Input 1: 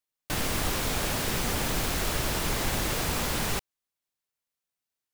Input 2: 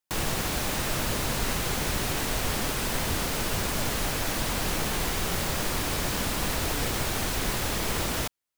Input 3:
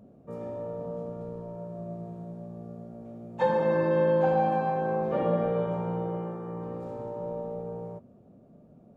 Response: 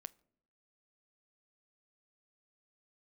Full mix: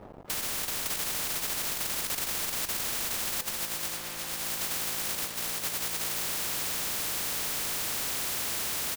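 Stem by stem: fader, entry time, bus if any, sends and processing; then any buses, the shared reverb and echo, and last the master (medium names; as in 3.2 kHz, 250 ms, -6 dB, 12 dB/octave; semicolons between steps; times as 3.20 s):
-11.5 dB, 0.00 s, no send, bass shelf 180 Hz +11.5 dB
-1.5 dB, 0.75 s, no send, high-pass 90 Hz 12 dB/octave; wavefolder -29 dBFS
-5.5 dB, 0.00 s, no send, tilt EQ -4 dB/octave; upward expansion 1.5:1, over -30 dBFS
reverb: none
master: compressor with a negative ratio -31 dBFS, ratio -0.5; crossover distortion -56.5 dBFS; spectrum-flattening compressor 10:1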